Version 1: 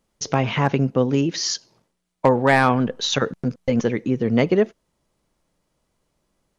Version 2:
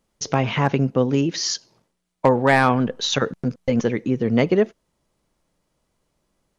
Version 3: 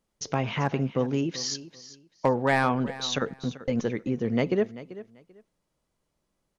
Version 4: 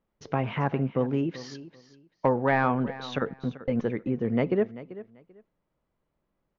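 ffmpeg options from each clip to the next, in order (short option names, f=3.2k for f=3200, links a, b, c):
-af anull
-af "aecho=1:1:389|778:0.158|0.0317,volume=-7dB"
-af "lowpass=2.2k"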